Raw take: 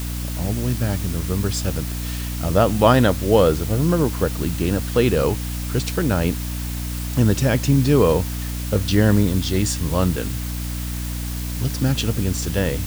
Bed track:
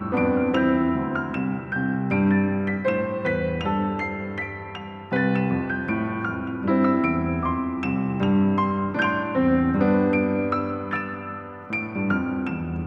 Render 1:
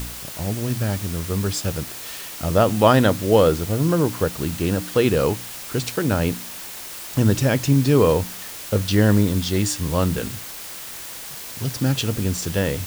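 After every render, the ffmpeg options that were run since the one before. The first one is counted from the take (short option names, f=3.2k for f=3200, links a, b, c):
-af "bandreject=f=60:t=h:w=4,bandreject=f=120:t=h:w=4,bandreject=f=180:t=h:w=4,bandreject=f=240:t=h:w=4,bandreject=f=300:t=h:w=4"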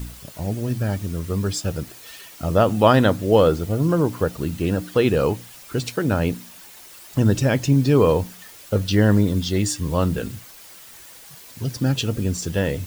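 -af "afftdn=nr=10:nf=-35"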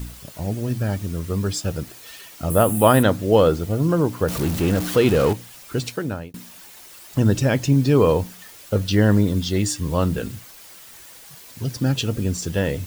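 -filter_complex "[0:a]asettb=1/sr,asplit=3[a][b][c];[a]atrim=end=2.504[d];[b]atrim=start=2.5:end=3.03,asetpts=PTS-STARTPTS,afade=t=in:d=0.004:c=qsin,afade=t=out:st=0.526:d=0.004:c=qsin,highshelf=f=7.6k:t=q:w=3:g=12.5[e];[c]atrim=start=3.026[f];[d][e]acrossfade=d=0.004:c1=hsin:c2=qsin[g];[g][f]acrossfade=d=0.004:c1=qsin:c2=hsin,asettb=1/sr,asplit=3[h][i][j];[h]atrim=end=4.284[k];[i]atrim=start=4.28:end=5.33,asetpts=PTS-STARTPTS,afade=t=in:d=0.004:c=qsin,afade=t=out:st=1.046:d=0.004:c=qsin,aeval=exprs='val(0)+0.5*0.0668*sgn(val(0))':c=same[l];[j]atrim=start=5.326[m];[k][l]acrossfade=d=0.004:c1=hsin:c2=qsin[n];[n][m]acrossfade=d=0.004:c1=qsin:c2=hsin,asplit=2[o][p];[o]atrim=end=6.34,asetpts=PTS-STARTPTS,afade=t=out:st=5.84:d=0.5[q];[p]atrim=start=6.34,asetpts=PTS-STARTPTS,afade=t=in:d=0.004:c=hsin[r];[q][r]concat=n=2:v=0:a=1"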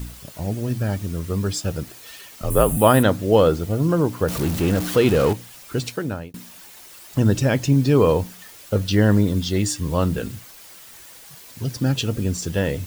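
-filter_complex "[0:a]asettb=1/sr,asplit=3[a][b][c];[a]atrim=end=2.274[d];[b]atrim=start=2.27:end=2.77,asetpts=PTS-STARTPTS,afade=t=in:d=0.004:c=qsin,afade=t=out:st=0.496:d=0.004:c=qsin,afreqshift=-58[e];[c]atrim=start=2.766[f];[d][e]acrossfade=d=0.004:c1=hsin:c2=qsin[g];[g][f]acrossfade=d=0.004:c1=qsin:c2=hsin"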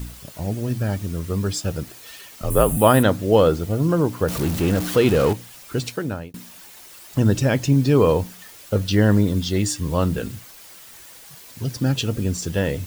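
-af anull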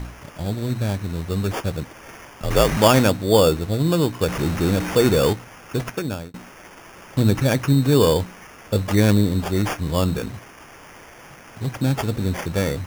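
-af "acrusher=samples=11:mix=1:aa=0.000001"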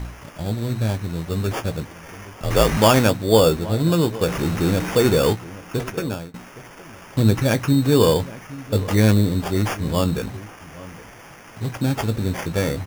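-filter_complex "[0:a]asplit=2[a][b];[b]adelay=18,volume=-10.5dB[c];[a][c]amix=inputs=2:normalize=0,asplit=2[d][e];[e]adelay=816.3,volume=-18dB,highshelf=f=4k:g=-18.4[f];[d][f]amix=inputs=2:normalize=0"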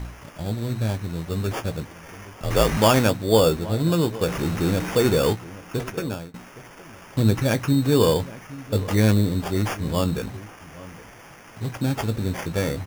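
-af "volume=-2.5dB"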